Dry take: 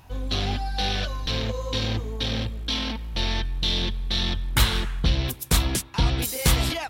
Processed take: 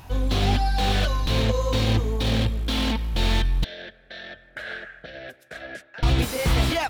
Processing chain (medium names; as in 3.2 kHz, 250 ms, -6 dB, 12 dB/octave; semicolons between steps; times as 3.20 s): peak limiter -16.5 dBFS, peak gain reduction 9.5 dB; 3.64–6.03 s: two resonant band-passes 1 kHz, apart 1.4 oct; slew-rate limiter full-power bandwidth 69 Hz; trim +6.5 dB